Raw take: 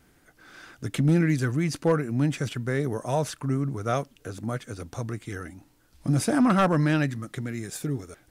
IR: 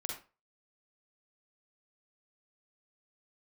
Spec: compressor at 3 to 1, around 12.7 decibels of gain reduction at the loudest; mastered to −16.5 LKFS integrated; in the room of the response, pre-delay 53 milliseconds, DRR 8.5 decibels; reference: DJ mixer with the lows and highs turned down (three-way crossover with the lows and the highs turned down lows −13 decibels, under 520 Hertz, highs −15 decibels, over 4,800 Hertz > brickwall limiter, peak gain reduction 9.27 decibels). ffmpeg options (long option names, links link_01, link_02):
-filter_complex "[0:a]acompressor=threshold=-35dB:ratio=3,asplit=2[link_01][link_02];[1:a]atrim=start_sample=2205,adelay=53[link_03];[link_02][link_03]afir=irnorm=-1:irlink=0,volume=-9dB[link_04];[link_01][link_04]amix=inputs=2:normalize=0,acrossover=split=520 4800:gain=0.224 1 0.178[link_05][link_06][link_07];[link_05][link_06][link_07]amix=inputs=3:normalize=0,volume=28.5dB,alimiter=limit=-4dB:level=0:latency=1"